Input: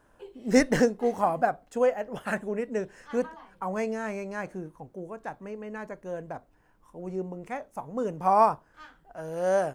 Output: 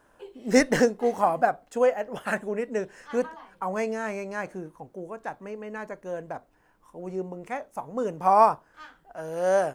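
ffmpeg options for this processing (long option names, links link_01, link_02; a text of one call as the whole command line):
ffmpeg -i in.wav -af "lowshelf=frequency=200:gain=-7.5,volume=3dB" out.wav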